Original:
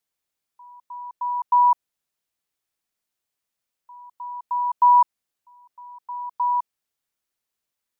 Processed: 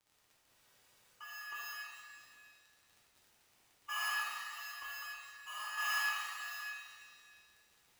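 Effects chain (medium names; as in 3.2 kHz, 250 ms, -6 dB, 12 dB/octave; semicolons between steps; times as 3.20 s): median filter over 25 samples; high-pass 720 Hz 24 dB/octave; dynamic bell 1 kHz, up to -3 dB, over -28 dBFS, Q 3.7; compression 8:1, threshold -26 dBFS, peak gain reduction 8.5 dB; formant-preserving pitch shift +9.5 st; crackle 74 per s -59 dBFS; inverted gate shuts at -35 dBFS, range -27 dB; spectral freeze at 0.48 s, 0.67 s; pitch-shifted reverb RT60 1.8 s, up +7 st, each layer -8 dB, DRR -7 dB; trim +4.5 dB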